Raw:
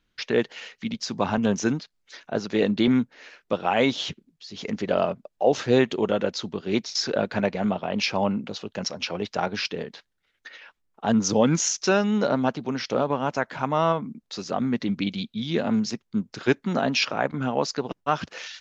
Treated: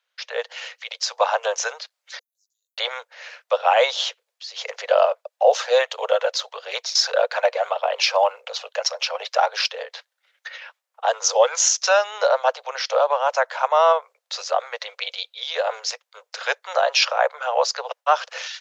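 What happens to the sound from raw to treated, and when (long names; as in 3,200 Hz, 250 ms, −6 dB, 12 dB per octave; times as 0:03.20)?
0:02.19–0:02.78: inverse Chebyshev high-pass filter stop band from 2,500 Hz, stop band 80 dB
0:05.49–0:09.69: phase shifter 1.7 Hz, delay 2 ms, feedback 31%
whole clip: Butterworth high-pass 490 Hz 96 dB per octave; dynamic equaliser 2,200 Hz, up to −4 dB, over −40 dBFS, Q 1.7; automatic gain control gain up to 7.5 dB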